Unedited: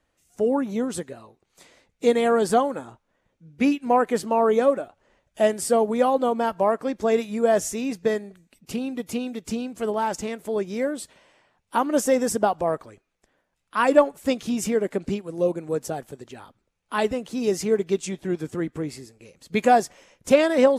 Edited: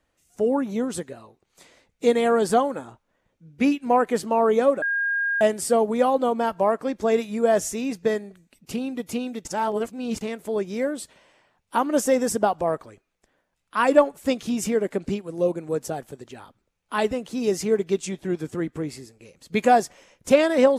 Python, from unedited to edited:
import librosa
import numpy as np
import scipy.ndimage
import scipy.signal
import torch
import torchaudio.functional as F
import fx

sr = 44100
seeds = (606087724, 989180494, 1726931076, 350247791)

y = fx.edit(x, sr, fx.bleep(start_s=4.82, length_s=0.59, hz=1620.0, db=-21.0),
    fx.reverse_span(start_s=9.45, length_s=0.76), tone=tone)